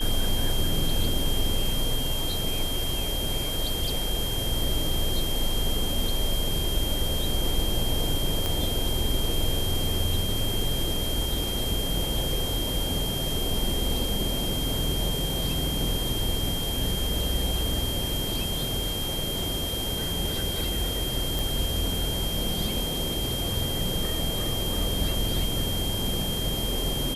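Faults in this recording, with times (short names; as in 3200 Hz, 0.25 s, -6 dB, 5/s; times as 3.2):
tone 3200 Hz -31 dBFS
8.46 pop
21.39 pop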